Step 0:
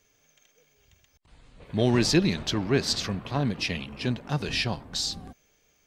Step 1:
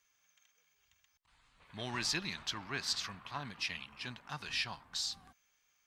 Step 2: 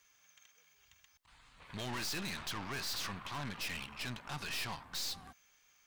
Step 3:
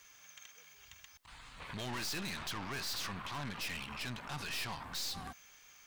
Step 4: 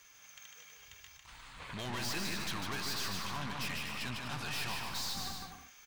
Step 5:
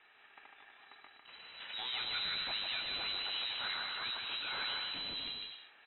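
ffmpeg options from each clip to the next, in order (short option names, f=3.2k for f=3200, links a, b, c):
-af "lowshelf=f=720:t=q:w=1.5:g=-12,volume=-8dB"
-af "aeval=exprs='(tanh(224*val(0)+0.6)-tanh(0.6))/224':c=same,volume=9.5dB"
-af "alimiter=level_in=19dB:limit=-24dB:level=0:latency=1:release=50,volume=-19dB,volume=9dB"
-af "aecho=1:1:150|247.5|310.9|352.1|378.8:0.631|0.398|0.251|0.158|0.1"
-af "lowpass=f=3.4k:t=q:w=0.5098,lowpass=f=3.4k:t=q:w=0.6013,lowpass=f=3.4k:t=q:w=0.9,lowpass=f=3.4k:t=q:w=2.563,afreqshift=-4000"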